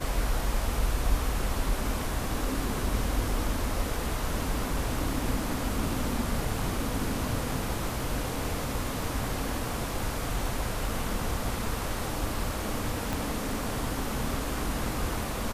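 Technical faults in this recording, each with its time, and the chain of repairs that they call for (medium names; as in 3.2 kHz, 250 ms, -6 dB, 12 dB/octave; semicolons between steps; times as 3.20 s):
13.13 s: pop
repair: de-click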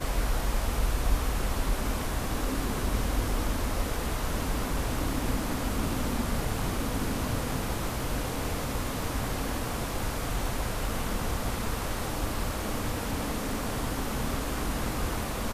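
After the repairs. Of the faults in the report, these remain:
13.13 s: pop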